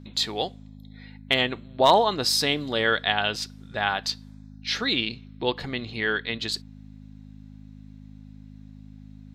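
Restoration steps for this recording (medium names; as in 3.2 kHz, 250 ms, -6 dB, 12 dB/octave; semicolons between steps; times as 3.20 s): clip repair -7 dBFS; de-hum 52 Hz, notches 5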